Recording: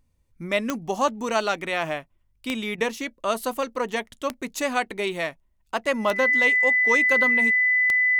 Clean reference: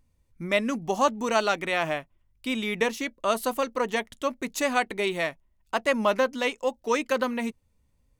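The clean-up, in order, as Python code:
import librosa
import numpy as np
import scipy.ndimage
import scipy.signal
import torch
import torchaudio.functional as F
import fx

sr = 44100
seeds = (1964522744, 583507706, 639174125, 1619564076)

y = fx.fix_declick_ar(x, sr, threshold=10.0)
y = fx.notch(y, sr, hz=2000.0, q=30.0)
y = fx.fix_interpolate(y, sr, at_s=(2.76,), length_ms=19.0)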